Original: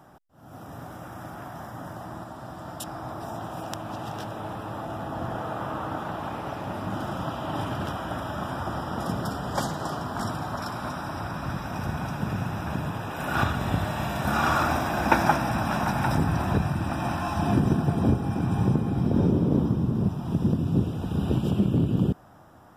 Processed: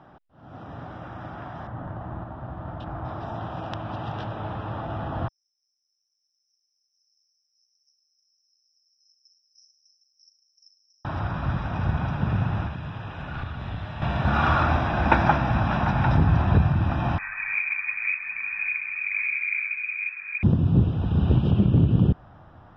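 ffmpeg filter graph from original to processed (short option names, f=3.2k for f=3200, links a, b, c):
-filter_complex "[0:a]asettb=1/sr,asplit=3[a][b][c];[a]atrim=end=1.674[d];[b]atrim=start=1.67:end=3.05,asetpts=PTS-STARTPTS,afade=t=in:d=0.004:c=qsin,afade=t=out:st=1.376:d=0.004:c=qsin,lowshelf=f=69:g=9.5,adynamicsmooth=sensitivity=2:basefreq=2.1k[e];[c]atrim=start=3.046[f];[d][e]acrossfade=d=0.004:c1=hsin:c2=qsin[g];[g][f]acrossfade=d=0.004:c1=qsin:c2=hsin,asettb=1/sr,asplit=3[h][i][j];[h]atrim=end=5.284[k];[i]atrim=start=5.28:end=11.05,asetpts=PTS-STARTPTS,afade=t=in:d=0.004:c=qsin,afade=t=out:st=5.766:d=0.004:c=qsin,asuperpass=centerf=5600:order=12:qfactor=6,asplit=2[l][m];[m]adelay=40,volume=-10.5dB[n];[l][n]amix=inputs=2:normalize=0,atrim=end_sample=254457[o];[j]atrim=start=11.046[p];[k][o]acrossfade=d=0.004:c1=hsin:c2=qsin[q];[q][p]acrossfade=d=0.004:c1=qsin:c2=hsin,asettb=1/sr,asplit=3[r][s][t];[r]atrim=end=12.664[u];[s]atrim=start=12.66:end=14.02,asetpts=PTS-STARTPTS,afade=t=in:d=0.004:c=qsin,afade=t=out:st=1.356:d=0.004:c=qsin,aeval=exprs='clip(val(0),-1,0.075)':c=same,acrossover=split=180|1600[v][w][x];[v]acompressor=threshold=-41dB:ratio=4[y];[w]acompressor=threshold=-42dB:ratio=4[z];[x]acompressor=threshold=-46dB:ratio=4[aa];[y][z][aa]amix=inputs=3:normalize=0[ab];[t]atrim=start=14.016[ac];[u][ab]acrossfade=d=0.004:c1=hsin:c2=qsin[ad];[ad][ac]acrossfade=d=0.004:c1=qsin:c2=hsin,asettb=1/sr,asplit=3[ae][af][ag];[ae]atrim=end=17.184[ah];[af]atrim=start=17.18:end=20.43,asetpts=PTS-STARTPTS,afade=t=in:d=0.004:c=qsin,afade=t=out:st=3.246:d=0.004:c=qsin,flanger=delay=1.5:depth=2.8:regen=80:speed=1.1:shape=sinusoidal,tremolo=f=100:d=0.462,lowpass=f=2.2k:t=q:w=0.5098,lowpass=f=2.2k:t=q:w=0.6013,lowpass=f=2.2k:t=q:w=0.9,lowpass=f=2.2k:t=q:w=2.563,afreqshift=-2600[ai];[ag]atrim=start=20.426[aj];[ah][ai]acrossfade=d=0.004:c1=hsin:c2=qsin[ak];[ak][aj]acrossfade=d=0.004:c1=qsin:c2=hsin,lowpass=f=3.9k:w=0.5412,lowpass=f=3.9k:w=1.3066,asubboost=boost=2.5:cutoff=140,volume=1.5dB"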